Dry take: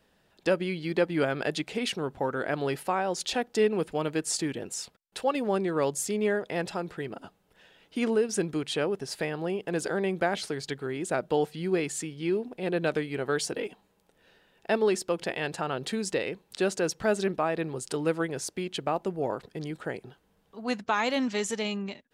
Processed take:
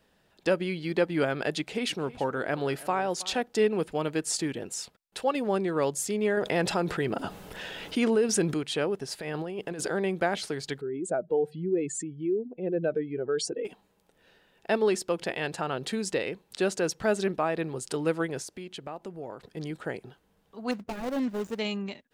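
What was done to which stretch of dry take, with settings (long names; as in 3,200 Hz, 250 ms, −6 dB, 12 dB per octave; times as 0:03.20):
0:01.56–0:03.42: single-tap delay 320 ms −18.5 dB
0:06.37–0:08.54: envelope flattener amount 50%
0:09.20–0:09.86: compressor whose output falls as the input rises −34 dBFS
0:10.81–0:13.65: expanding power law on the bin magnitudes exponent 1.9
0:18.42–0:19.57: downward compressor 2 to 1, threshold −42 dBFS
0:20.71–0:21.59: running median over 41 samples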